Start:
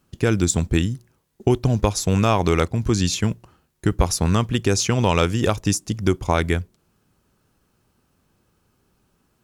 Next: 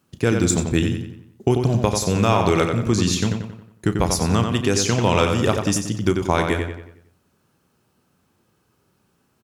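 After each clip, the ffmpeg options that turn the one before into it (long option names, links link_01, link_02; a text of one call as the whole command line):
ffmpeg -i in.wav -filter_complex "[0:a]highpass=93,asplit=2[link_01][link_02];[link_02]adelay=34,volume=-12.5dB[link_03];[link_01][link_03]amix=inputs=2:normalize=0,asplit=2[link_04][link_05];[link_05]adelay=91,lowpass=frequency=4400:poles=1,volume=-5dB,asplit=2[link_06][link_07];[link_07]adelay=91,lowpass=frequency=4400:poles=1,volume=0.46,asplit=2[link_08][link_09];[link_09]adelay=91,lowpass=frequency=4400:poles=1,volume=0.46,asplit=2[link_10][link_11];[link_11]adelay=91,lowpass=frequency=4400:poles=1,volume=0.46,asplit=2[link_12][link_13];[link_13]adelay=91,lowpass=frequency=4400:poles=1,volume=0.46,asplit=2[link_14][link_15];[link_15]adelay=91,lowpass=frequency=4400:poles=1,volume=0.46[link_16];[link_06][link_08][link_10][link_12][link_14][link_16]amix=inputs=6:normalize=0[link_17];[link_04][link_17]amix=inputs=2:normalize=0" out.wav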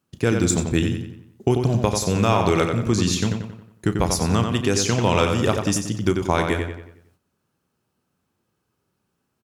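ffmpeg -i in.wav -af "agate=range=-8dB:threshold=-59dB:ratio=16:detection=peak,volume=-1dB" out.wav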